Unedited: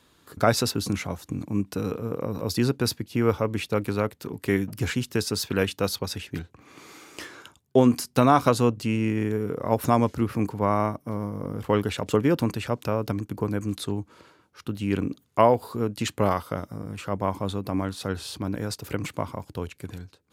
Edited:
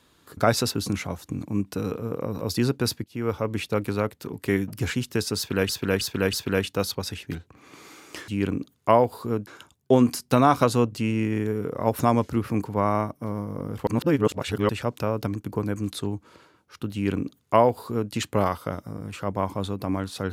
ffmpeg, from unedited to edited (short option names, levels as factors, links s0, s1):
-filter_complex "[0:a]asplit=9[s0][s1][s2][s3][s4][s5][s6][s7][s8];[s0]atrim=end=3.04,asetpts=PTS-STARTPTS,afade=t=out:st=3.036:d=0.004:c=hsin:silence=0.237137[s9];[s1]atrim=start=3.04:end=5.692,asetpts=PTS-STARTPTS,afade=t=in:d=0.51:silence=0.237137[s10];[s2]atrim=start=5.368:end=5.692[s11];[s3]atrim=start=5.368:end=5.692[s12];[s4]atrim=start=5.368:end=7.322[s13];[s5]atrim=start=14.778:end=15.972[s14];[s6]atrim=start=7.318:end=11.722[s15];[s7]atrim=start=11.718:end=12.542,asetpts=PTS-STARTPTS,areverse[s16];[s8]atrim=start=12.538[s17];[s9][s10]concat=n=2:v=0:a=1[s18];[s18][s11]acrossfade=d=0.004:c1=hsin:c2=hsin[s19];[s19][s12]acrossfade=d=0.004:c1=hsin:c2=hsin[s20];[s20][s13]acrossfade=d=0.004:c1=hsin:c2=hsin[s21];[s21][s14]acrossfade=d=0.004:c1=hsin:c2=hsin[s22];[s22][s15]acrossfade=d=0.004:c1=hsin:c2=hsin[s23];[s23][s16]acrossfade=d=0.004:c1=hsin:c2=hsin[s24];[s24][s17]acrossfade=d=0.004:c1=hsin:c2=hsin"